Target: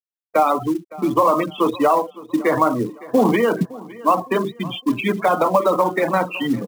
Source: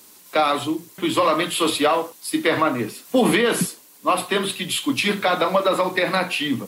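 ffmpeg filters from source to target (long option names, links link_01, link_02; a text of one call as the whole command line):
ffmpeg -i in.wav -filter_complex "[0:a]lowpass=frequency=1200:poles=1,afftfilt=real='re*gte(hypot(re,im),0.0708)':imag='im*gte(hypot(re,im),0.0708)':win_size=1024:overlap=0.75,asplit=2[link_01][link_02];[link_02]acompressor=threshold=-30dB:ratio=8,volume=2.5dB[link_03];[link_01][link_03]amix=inputs=2:normalize=0,equalizer=frequency=930:width=2.2:gain=5.5,acrusher=bits=6:mode=log:mix=0:aa=0.000001,areverse,acompressor=mode=upward:threshold=-35dB:ratio=2.5,areverse,aecho=1:1:561|1122|1683:0.1|0.037|0.0137" out.wav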